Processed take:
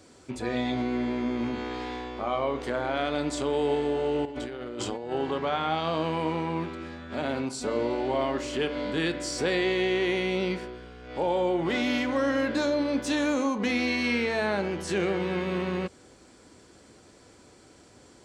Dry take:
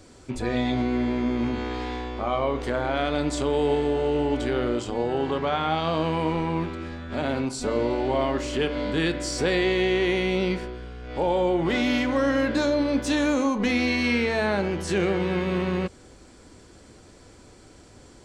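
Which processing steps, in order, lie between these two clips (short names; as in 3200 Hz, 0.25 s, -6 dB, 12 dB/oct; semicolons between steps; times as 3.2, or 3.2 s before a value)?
HPF 150 Hz 6 dB/oct; 4.25–5.12 negative-ratio compressor -33 dBFS, ratio -1; gain -2.5 dB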